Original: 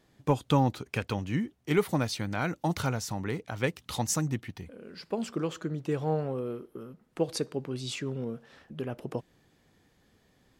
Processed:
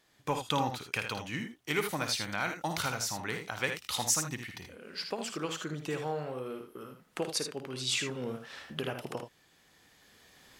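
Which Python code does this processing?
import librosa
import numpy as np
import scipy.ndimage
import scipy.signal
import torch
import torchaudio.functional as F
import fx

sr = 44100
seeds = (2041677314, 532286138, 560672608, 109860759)

p1 = fx.recorder_agc(x, sr, target_db=-17.5, rise_db_per_s=7.2, max_gain_db=30)
p2 = fx.tilt_shelf(p1, sr, db=-7.5, hz=650.0)
p3 = p2 + fx.room_early_taps(p2, sr, ms=(54, 79), db=(-10.0, -8.0), dry=0)
y = F.gain(torch.from_numpy(p3), -5.0).numpy()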